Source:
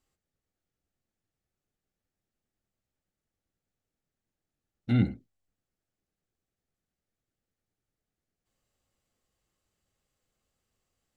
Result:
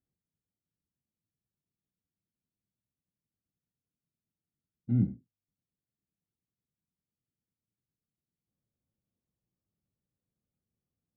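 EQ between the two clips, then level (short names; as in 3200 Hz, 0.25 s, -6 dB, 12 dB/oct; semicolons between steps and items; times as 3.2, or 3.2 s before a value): band-pass 160 Hz, Q 1.2; air absorption 200 m; 0.0 dB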